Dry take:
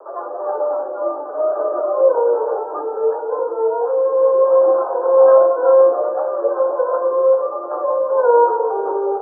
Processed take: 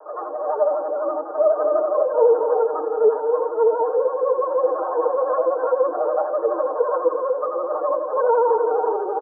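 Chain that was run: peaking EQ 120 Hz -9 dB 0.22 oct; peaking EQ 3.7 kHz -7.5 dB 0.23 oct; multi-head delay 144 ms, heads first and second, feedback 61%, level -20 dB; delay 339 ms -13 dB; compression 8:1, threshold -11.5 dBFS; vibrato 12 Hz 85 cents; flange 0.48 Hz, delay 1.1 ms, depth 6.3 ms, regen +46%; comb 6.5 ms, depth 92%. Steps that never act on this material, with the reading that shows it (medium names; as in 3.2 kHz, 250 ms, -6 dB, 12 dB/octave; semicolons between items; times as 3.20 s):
peaking EQ 120 Hz: input has nothing below 320 Hz; peaking EQ 3.7 kHz: input has nothing above 1.1 kHz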